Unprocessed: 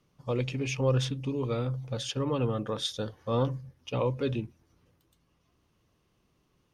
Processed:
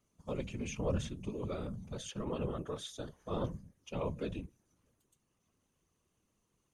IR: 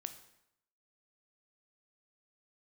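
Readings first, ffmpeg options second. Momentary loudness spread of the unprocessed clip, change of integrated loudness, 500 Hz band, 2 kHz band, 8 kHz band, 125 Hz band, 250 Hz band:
8 LU, -9.0 dB, -8.5 dB, -9.5 dB, -6.0 dB, -10.5 dB, -7.0 dB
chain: -filter_complex "[0:a]acrossover=split=3200[s0][s1];[s1]acompressor=threshold=0.00708:ratio=4:attack=1:release=60[s2];[s0][s2]amix=inputs=2:normalize=0,superequalizer=15b=3.16:16b=3.16,afftfilt=real='hypot(re,im)*cos(2*PI*random(0))':imag='hypot(re,im)*sin(2*PI*random(1))':win_size=512:overlap=0.75,volume=0.75"

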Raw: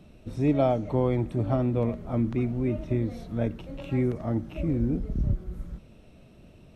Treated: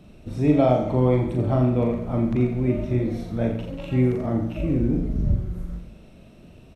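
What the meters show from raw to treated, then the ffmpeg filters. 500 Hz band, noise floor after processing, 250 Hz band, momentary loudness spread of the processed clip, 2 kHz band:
+5.0 dB, -48 dBFS, +5.0 dB, 9 LU, +4.5 dB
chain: -af "aecho=1:1:40|86|138.9|199.7|269.7:0.631|0.398|0.251|0.158|0.1,volume=1.33"

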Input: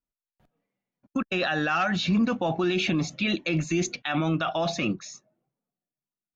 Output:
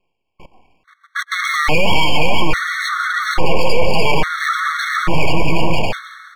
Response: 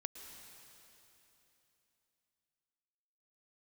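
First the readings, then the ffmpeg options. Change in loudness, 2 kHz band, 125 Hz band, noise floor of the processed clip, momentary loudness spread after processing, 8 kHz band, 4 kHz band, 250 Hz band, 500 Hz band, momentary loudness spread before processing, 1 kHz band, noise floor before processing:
+8.5 dB, +12.5 dB, +7.0 dB, -68 dBFS, 6 LU, no reading, +11.0 dB, +1.0 dB, +9.5 dB, 6 LU, +12.5 dB, under -85 dBFS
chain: -filter_complex "[0:a]aecho=1:1:2.4:0.61,highpass=f=450:t=q:w=0.5412,highpass=f=450:t=q:w=1.307,lowpass=f=2000:t=q:w=0.5176,lowpass=f=2000:t=q:w=0.7071,lowpass=f=2000:t=q:w=1.932,afreqshift=-100,aeval=exprs='abs(val(0))':c=same,aecho=1:1:480|768|940.8|1044|1107:0.631|0.398|0.251|0.158|0.1,asplit=2[s0][s1];[1:a]atrim=start_sample=2205[s2];[s1][s2]afir=irnorm=-1:irlink=0,volume=0.316[s3];[s0][s3]amix=inputs=2:normalize=0,alimiter=level_in=44.7:limit=0.891:release=50:level=0:latency=1,afftfilt=real='re*gt(sin(2*PI*0.59*pts/sr)*(1-2*mod(floor(b*sr/1024/1100),2)),0)':imag='im*gt(sin(2*PI*0.59*pts/sr)*(1-2*mod(floor(b*sr/1024/1100),2)),0)':win_size=1024:overlap=0.75,volume=0.891"

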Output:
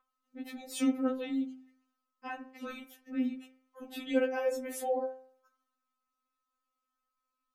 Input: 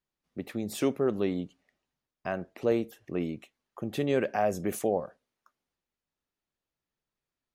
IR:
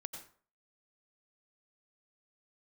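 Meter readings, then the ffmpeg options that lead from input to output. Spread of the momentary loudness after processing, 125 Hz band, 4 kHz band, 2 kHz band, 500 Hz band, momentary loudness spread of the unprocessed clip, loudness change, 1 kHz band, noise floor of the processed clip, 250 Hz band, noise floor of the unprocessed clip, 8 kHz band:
18 LU, under -25 dB, -1.5 dB, -2.5 dB, -5.5 dB, 14 LU, -3.5 dB, -5.0 dB, under -85 dBFS, -1.5 dB, under -85 dBFS, -2.0 dB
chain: -af "aeval=exprs='val(0)+0.00224*sin(2*PI*1200*n/s)':c=same,bandreject=f=260.1:t=h:w=4,bandreject=f=520.2:t=h:w=4,bandreject=f=780.3:t=h:w=4,bandreject=f=1040.4:t=h:w=4,bandreject=f=1300.5:t=h:w=4,bandreject=f=1560.6:t=h:w=4,bandreject=f=1820.7:t=h:w=4,bandreject=f=2080.8:t=h:w=4,bandreject=f=2340.9:t=h:w=4,bandreject=f=2601:t=h:w=4,bandreject=f=2861.1:t=h:w=4,bandreject=f=3121.2:t=h:w=4,bandreject=f=3381.3:t=h:w=4,bandreject=f=3641.4:t=h:w=4,bandreject=f=3901.5:t=h:w=4,bandreject=f=4161.6:t=h:w=4,bandreject=f=4421.7:t=h:w=4,bandreject=f=4681.8:t=h:w=4,bandreject=f=4941.9:t=h:w=4,bandreject=f=5202:t=h:w=4,bandreject=f=5462.1:t=h:w=4,bandreject=f=5722.2:t=h:w=4,bandreject=f=5982.3:t=h:w=4,bandreject=f=6242.4:t=h:w=4,bandreject=f=6502.5:t=h:w=4,bandreject=f=6762.6:t=h:w=4,bandreject=f=7022.7:t=h:w=4,bandreject=f=7282.8:t=h:w=4,bandreject=f=7542.9:t=h:w=4,bandreject=f=7803:t=h:w=4,bandreject=f=8063.1:t=h:w=4,bandreject=f=8323.2:t=h:w=4,bandreject=f=8583.3:t=h:w=4,bandreject=f=8843.4:t=h:w=4,bandreject=f=9103.5:t=h:w=4,afftfilt=real='re*3.46*eq(mod(b,12),0)':imag='im*3.46*eq(mod(b,12),0)':win_size=2048:overlap=0.75"

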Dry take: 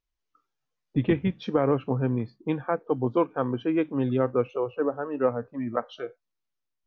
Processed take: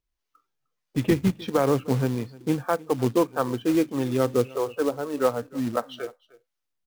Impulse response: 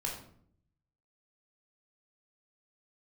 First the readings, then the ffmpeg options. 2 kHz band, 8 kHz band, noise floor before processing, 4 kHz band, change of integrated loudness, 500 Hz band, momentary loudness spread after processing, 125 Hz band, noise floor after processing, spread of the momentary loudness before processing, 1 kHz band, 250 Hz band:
+2.5 dB, no reading, -82 dBFS, +7.0 dB, +2.0 dB, +1.5 dB, 7 LU, +1.5 dB, -82 dBFS, 7 LU, +2.0 dB, +2.0 dB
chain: -filter_complex "[0:a]acrossover=split=510[s0][s1];[s0]aeval=exprs='val(0)*(1-0.5/2+0.5/2*cos(2*PI*1.6*n/s))':c=same[s2];[s1]aeval=exprs='val(0)*(1-0.5/2-0.5/2*cos(2*PI*1.6*n/s))':c=same[s3];[s2][s3]amix=inputs=2:normalize=0,acrusher=bits=4:mode=log:mix=0:aa=0.000001,aecho=1:1:305:0.0794,volume=1.58"

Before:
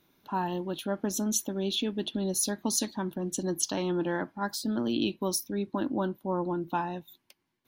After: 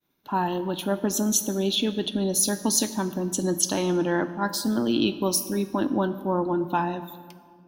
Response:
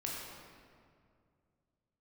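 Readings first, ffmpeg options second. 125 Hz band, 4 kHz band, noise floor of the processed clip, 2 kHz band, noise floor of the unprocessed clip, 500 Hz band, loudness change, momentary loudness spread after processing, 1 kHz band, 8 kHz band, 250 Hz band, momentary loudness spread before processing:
+5.5 dB, +5.5 dB, -53 dBFS, +5.5 dB, -77 dBFS, +5.5 dB, +6.0 dB, 5 LU, +5.5 dB, +6.0 dB, +5.5 dB, 5 LU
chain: -filter_complex "[0:a]agate=range=0.0224:threshold=0.00126:ratio=3:detection=peak,asplit=2[s0][s1];[1:a]atrim=start_sample=2205,asetrate=48510,aresample=44100,highshelf=f=9400:g=11[s2];[s1][s2]afir=irnorm=-1:irlink=0,volume=0.299[s3];[s0][s3]amix=inputs=2:normalize=0,volume=1.58"

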